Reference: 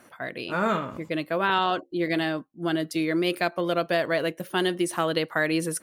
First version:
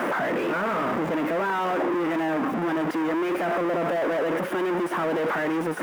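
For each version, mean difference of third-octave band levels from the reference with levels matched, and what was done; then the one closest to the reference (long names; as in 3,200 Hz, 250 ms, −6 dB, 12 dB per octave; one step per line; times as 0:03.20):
9.0 dB: sign of each sample alone
three-way crossover with the lows and the highs turned down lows −22 dB, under 180 Hz, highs −23 dB, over 2,100 Hz
notch filter 4,200 Hz, Q 14
level +3.5 dB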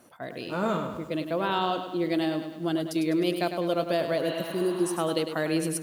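4.5 dB: healed spectral selection 0:04.30–0:04.90, 600–4,500 Hz both
parametric band 1,800 Hz −9 dB 1.2 octaves
feedback echo at a low word length 102 ms, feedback 55%, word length 9 bits, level −8.5 dB
level −1 dB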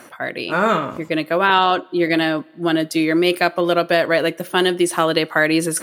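1.5 dB: low-shelf EQ 110 Hz −10.5 dB
reversed playback
upward compression, threshold −32 dBFS
reversed playback
coupled-rooms reverb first 0.23 s, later 2 s, from −21 dB, DRR 18 dB
level +8.5 dB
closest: third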